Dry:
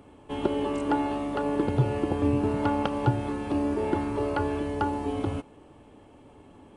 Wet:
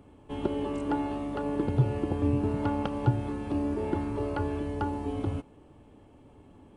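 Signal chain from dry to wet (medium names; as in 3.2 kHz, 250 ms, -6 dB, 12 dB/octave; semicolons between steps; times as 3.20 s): bass shelf 260 Hz +7.5 dB; trim -6 dB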